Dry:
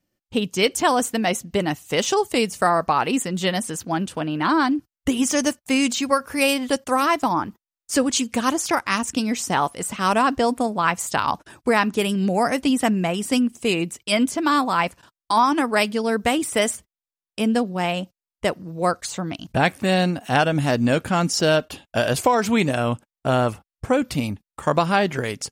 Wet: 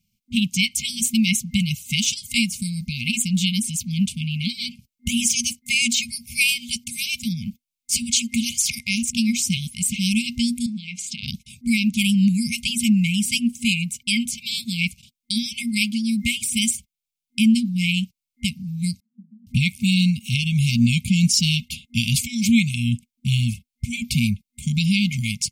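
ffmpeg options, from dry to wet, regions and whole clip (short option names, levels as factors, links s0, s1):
-filter_complex "[0:a]asettb=1/sr,asplit=3[s0][s1][s2];[s0]atrim=end=10.664[s3];[s1]atrim=start=10.66:end=11.23,asetpts=PTS-STARTPTS,afade=t=in:d=0.004:c=qsin,afade=t=out:st=0.566:d=0.004:c=qsin,acompressor=threshold=0.0562:ratio=4:attack=3.2:release=140:knee=1:detection=peak,highpass=210,lowpass=5400,bandreject=f=50:t=h:w=6,bandreject=f=100:t=h:w=6,bandreject=f=150:t=h:w=6,bandreject=f=200:t=h:w=6,bandreject=f=250:t=h:w=6,bandreject=f=300:t=h:w=6,bandreject=f=350:t=h:w=6[s4];[s2]atrim=start=11.226[s5];[s3][s4]acrossfade=d=0.004:c1=hsin:c2=qsin[s6];[s6][s5]acrossfade=d=0.004:c1=qsin:c2=hsin,asettb=1/sr,asplit=3[s7][s8][s9];[s7]atrim=end=19.004[s10];[s8]atrim=start=19:end=19.47,asetpts=PTS-STARTPTS,afade=t=in:d=0.004:c=qsin,afade=t=out:st=0.466:d=0.004:c=qsin,asuperpass=centerf=220:order=4:qfactor=7.2,aemphasis=mode=production:type=riaa[s11];[s9]atrim=start=19.466[s12];[s10][s11]acrossfade=d=0.004:c1=hsin:c2=qsin[s13];[s13][s12]acrossfade=d=0.004:c1=qsin:c2=hsin,afftfilt=real='re*(1-between(b*sr/4096,240,2100))':imag='im*(1-between(b*sr/4096,240,2100))':win_size=4096:overlap=0.75,alimiter=limit=0.2:level=0:latency=1:release=430,volume=2.11"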